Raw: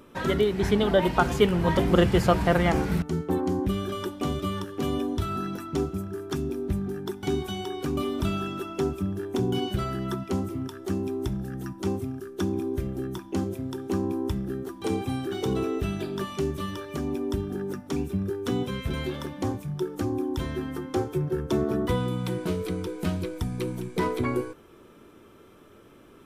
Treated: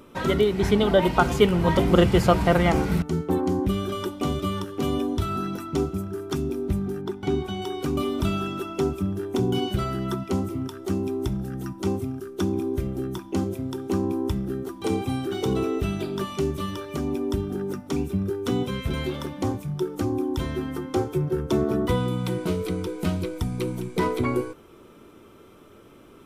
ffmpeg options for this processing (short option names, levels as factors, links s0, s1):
-filter_complex "[0:a]asettb=1/sr,asplit=3[s0][s1][s2];[s0]atrim=end=7.014[s3];[s1]atrim=start=7.01:end=7.62,asetpts=PTS-STARTPTS,afade=t=in:d=0.004:c=qsin,afade=t=out:st=0.606:d=0.004:c=qsin,lowpass=f=2600:p=1[s4];[s2]atrim=start=7.616[s5];[s3][s4]acrossfade=d=0.004:c1=hsin:c2=qsin[s6];[s6][s5]acrossfade=d=0.004:c1=qsin:c2=hsin,bandreject=f=1700:w=11,volume=1.33"